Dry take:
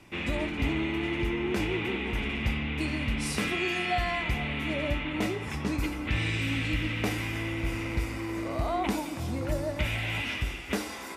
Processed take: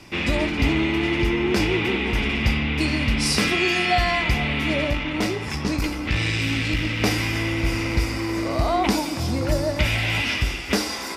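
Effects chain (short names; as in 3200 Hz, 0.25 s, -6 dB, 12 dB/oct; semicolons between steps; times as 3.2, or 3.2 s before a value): bell 5000 Hz +10 dB 0.49 oct; 4.84–7.01 tube stage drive 20 dB, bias 0.5; gain +8 dB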